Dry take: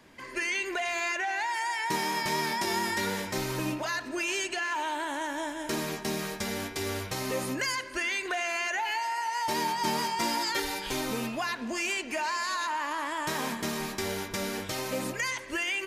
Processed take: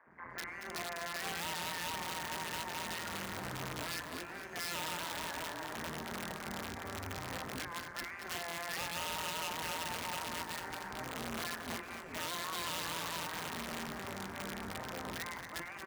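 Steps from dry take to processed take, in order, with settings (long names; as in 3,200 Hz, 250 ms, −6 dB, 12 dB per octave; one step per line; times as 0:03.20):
dynamic equaliser 5,600 Hz, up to +6 dB, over −49 dBFS, Q 1.4
tube saturation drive 35 dB, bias 0.6
drawn EQ curve 220 Hz 0 dB, 330 Hz −7 dB, 700 Hz −1 dB, 1,800 Hz 0 dB, 3,100 Hz −26 dB
three-band delay without the direct sound mids, lows, highs 60/110 ms, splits 420/3,000 Hz
amplitude modulation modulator 170 Hz, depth 90%
wrap-around overflow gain 38 dB
high-pass filter 51 Hz
on a send: repeating echo 229 ms, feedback 46%, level −9 dB
on the sum: level +5.5 dB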